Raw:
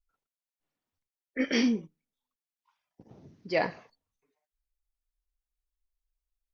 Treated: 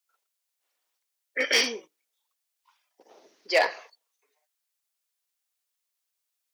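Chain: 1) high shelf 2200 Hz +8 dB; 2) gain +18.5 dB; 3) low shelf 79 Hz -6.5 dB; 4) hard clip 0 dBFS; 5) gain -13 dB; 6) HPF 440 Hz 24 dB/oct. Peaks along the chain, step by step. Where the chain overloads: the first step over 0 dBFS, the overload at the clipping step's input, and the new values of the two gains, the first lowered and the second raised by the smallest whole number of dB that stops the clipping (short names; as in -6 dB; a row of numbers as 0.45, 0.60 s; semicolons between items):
-10.5, +8.0, +8.0, 0.0, -13.0, -9.0 dBFS; step 2, 8.0 dB; step 2 +10.5 dB, step 5 -5 dB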